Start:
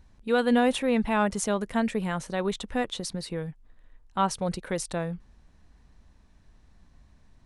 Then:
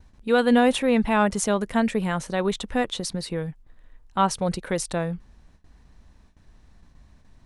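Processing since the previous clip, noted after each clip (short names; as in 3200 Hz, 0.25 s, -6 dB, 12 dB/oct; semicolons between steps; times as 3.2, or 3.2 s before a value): gate with hold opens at -48 dBFS; gain +4 dB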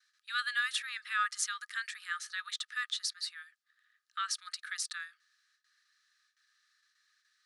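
rippled Chebyshev high-pass 1200 Hz, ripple 9 dB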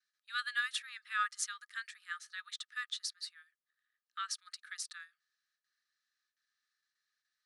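upward expander 1.5:1, over -51 dBFS; gain -1.5 dB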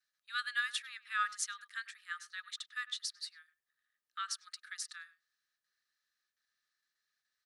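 speakerphone echo 0.1 s, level -17 dB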